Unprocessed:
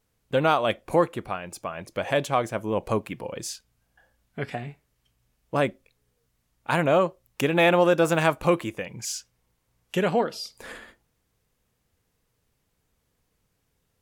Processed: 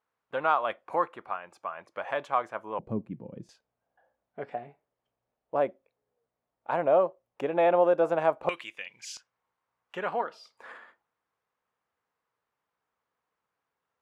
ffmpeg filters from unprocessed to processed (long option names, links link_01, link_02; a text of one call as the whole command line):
ffmpeg -i in.wav -af "asetnsamples=nb_out_samples=441:pad=0,asendcmd='2.79 bandpass f 190;3.49 bandpass f 660;8.49 bandpass f 2700;9.17 bandpass f 1100',bandpass=frequency=1100:width_type=q:width=1.6:csg=0" out.wav